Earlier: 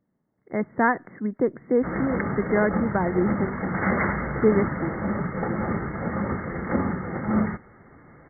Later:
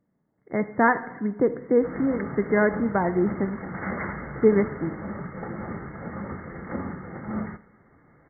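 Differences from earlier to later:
background -8.0 dB; reverb: on

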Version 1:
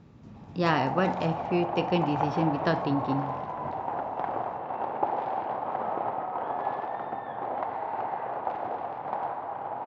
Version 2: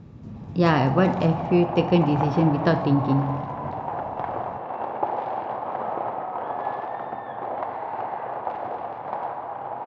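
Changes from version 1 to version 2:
speech: add bass shelf 430 Hz +8 dB; reverb: on, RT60 1.5 s

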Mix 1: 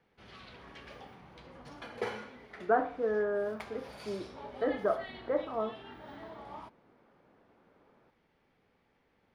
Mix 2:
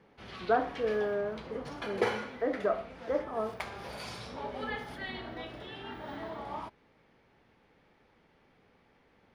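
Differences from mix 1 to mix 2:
speech: entry -2.20 s; background +6.5 dB

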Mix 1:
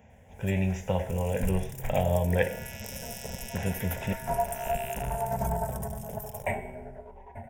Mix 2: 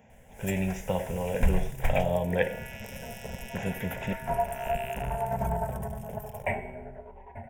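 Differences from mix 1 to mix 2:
speech: add peaking EQ 80 Hz -11.5 dB 0.54 oct; first sound +8.5 dB; second sound: add resonant high shelf 3.5 kHz -7 dB, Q 1.5

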